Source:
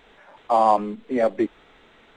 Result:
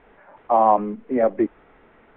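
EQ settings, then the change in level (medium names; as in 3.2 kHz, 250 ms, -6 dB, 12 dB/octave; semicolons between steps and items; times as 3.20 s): Bessel low-pass 1.6 kHz, order 6; +2.0 dB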